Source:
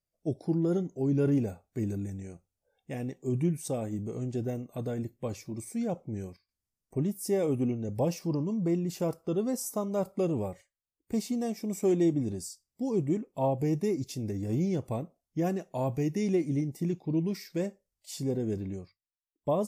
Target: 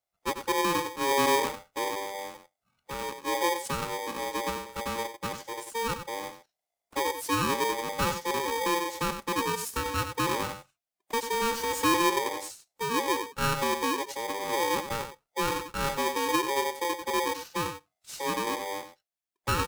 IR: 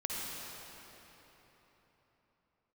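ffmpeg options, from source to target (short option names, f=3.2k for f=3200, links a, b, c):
-filter_complex "[0:a]asettb=1/sr,asplit=3[a][b][c];[a]atrim=end=11.334[d];[b]atrim=start=11.33:end=11.97,asetpts=PTS-STARTPTS,afade=t=in:d=0.004:c=qsin,afade=t=out:st=0.636:d=0.004:c=qsin,aeval=exprs='val(0)+0.5*0.02*sgn(val(0))':c=same[e];[c]atrim=start=11.966[f];[d][e]acrossfade=d=0.004:c1=hsin:c2=qsin[g];[g][f]acrossfade=d=0.004:c1=qsin:c2=hsin,asplit=2[h][i];[i]adelay=93.29,volume=-9dB,highshelf=f=4k:g=-2.1[j];[h][j]amix=inputs=2:normalize=0,aeval=exprs='val(0)*sgn(sin(2*PI*690*n/s))':c=same"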